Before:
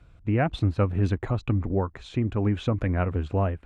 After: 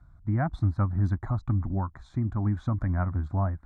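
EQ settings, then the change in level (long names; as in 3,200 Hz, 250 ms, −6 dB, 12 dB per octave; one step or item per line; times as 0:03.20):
high-shelf EQ 2,800 Hz −10.5 dB
phaser with its sweep stopped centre 1,100 Hz, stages 4
notch filter 3,100 Hz, Q 7.1
0.0 dB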